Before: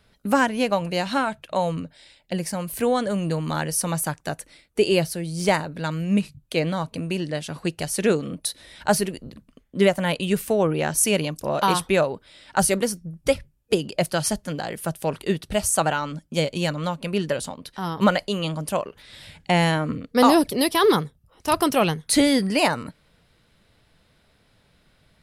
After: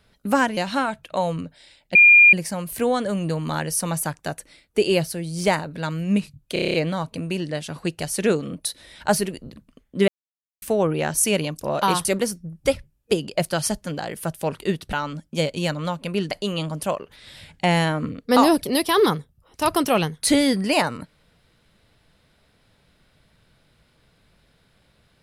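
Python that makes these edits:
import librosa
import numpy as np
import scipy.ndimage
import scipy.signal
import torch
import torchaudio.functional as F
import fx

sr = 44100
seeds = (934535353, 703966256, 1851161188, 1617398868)

y = fx.edit(x, sr, fx.cut(start_s=0.57, length_s=0.39),
    fx.insert_tone(at_s=2.34, length_s=0.38, hz=2410.0, db=-7.5),
    fx.stutter(start_s=6.54, slice_s=0.03, count=8),
    fx.silence(start_s=9.88, length_s=0.54),
    fx.cut(start_s=11.85, length_s=0.81),
    fx.cut(start_s=15.54, length_s=0.38),
    fx.cut(start_s=17.3, length_s=0.87), tone=tone)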